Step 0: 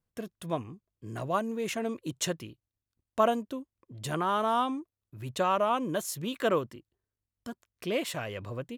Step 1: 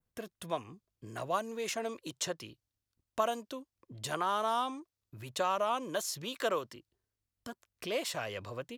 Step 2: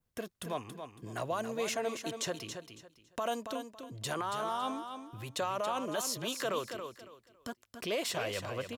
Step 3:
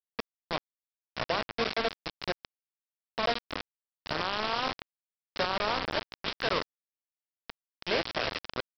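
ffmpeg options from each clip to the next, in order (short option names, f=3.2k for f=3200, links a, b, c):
-filter_complex "[0:a]adynamicequalizer=threshold=0.002:dfrequency=5000:dqfactor=1.3:tfrequency=5000:tqfactor=1.3:attack=5:release=100:ratio=0.375:range=4:mode=boostabove:tftype=bell,acrossover=split=450|1500|5100[a][b][c][d];[a]acompressor=threshold=-47dB:ratio=4[e];[b]acompressor=threshold=-29dB:ratio=4[f];[c]acompressor=threshold=-41dB:ratio=4[g];[d]acompressor=threshold=-39dB:ratio=4[h];[e][f][g][h]amix=inputs=4:normalize=0"
-filter_complex "[0:a]alimiter=level_in=3.5dB:limit=-24dB:level=0:latency=1:release=12,volume=-3.5dB,asplit=2[a][b];[b]aecho=0:1:278|556|834:0.398|0.0995|0.0249[c];[a][c]amix=inputs=2:normalize=0,volume=2.5dB"
-filter_complex "[0:a]asplit=2[a][b];[b]adelay=43,volume=-7.5dB[c];[a][c]amix=inputs=2:normalize=0,aresample=11025,acrusher=bits=4:mix=0:aa=0.000001,aresample=44100,volume=2.5dB"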